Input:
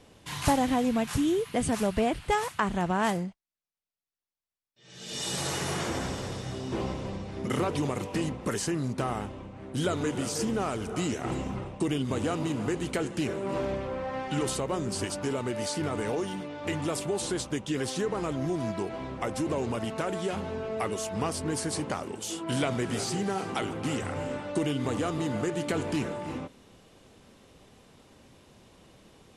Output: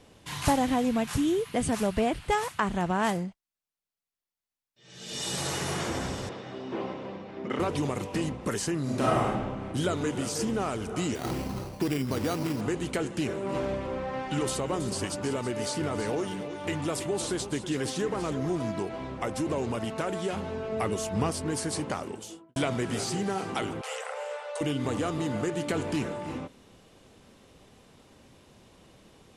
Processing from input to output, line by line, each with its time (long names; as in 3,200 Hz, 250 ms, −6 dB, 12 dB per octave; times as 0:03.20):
0:06.29–0:07.60: band-pass filter 230–3,000 Hz
0:08.82–0:09.67: thrown reverb, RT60 1.1 s, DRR −6 dB
0:11.15–0:12.61: sample-rate reduction 5,200 Hz
0:13.22–0:18.81: single-tap delay 325 ms −11.5 dB
0:20.72–0:21.31: low-shelf EQ 270 Hz +6.5 dB
0:22.06–0:22.56: fade out and dull
0:23.81–0:24.61: linear-phase brick-wall high-pass 430 Hz